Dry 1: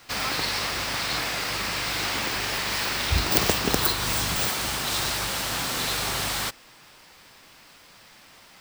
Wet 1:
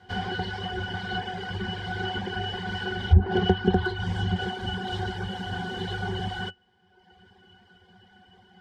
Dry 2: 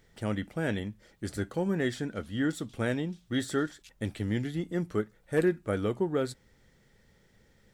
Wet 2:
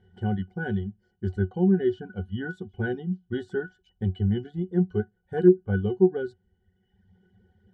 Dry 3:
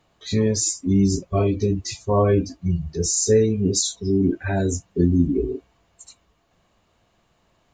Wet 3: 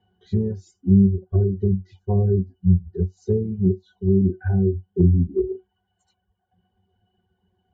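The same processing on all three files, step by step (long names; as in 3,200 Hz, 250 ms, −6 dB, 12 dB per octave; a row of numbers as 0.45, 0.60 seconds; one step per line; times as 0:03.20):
reverb reduction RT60 1.2 s
resonances in every octave F#, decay 0.12 s
treble cut that deepens with the level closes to 500 Hz, closed at −24 dBFS
normalise the peak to −6 dBFS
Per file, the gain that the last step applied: +14.0, +14.0, +8.0 decibels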